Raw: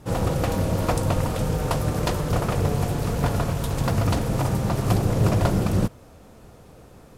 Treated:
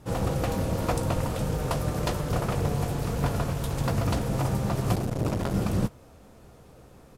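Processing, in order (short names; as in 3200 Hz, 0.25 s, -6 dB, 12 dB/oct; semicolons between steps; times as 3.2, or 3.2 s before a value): doubler 15 ms -12.5 dB; 4.95–5.54 core saturation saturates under 380 Hz; gain -4 dB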